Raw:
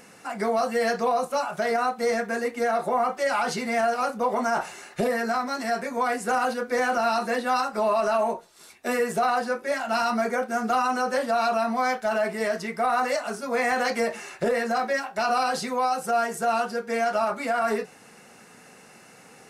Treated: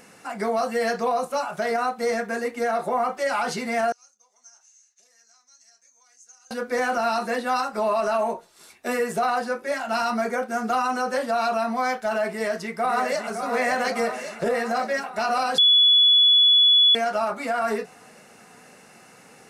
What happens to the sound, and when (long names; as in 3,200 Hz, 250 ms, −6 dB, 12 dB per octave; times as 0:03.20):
0:03.92–0:06.51: resonant band-pass 6,300 Hz, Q 15
0:12.28–0:13.35: delay throw 560 ms, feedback 70%, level −7 dB
0:15.58–0:16.95: beep over 3,410 Hz −12.5 dBFS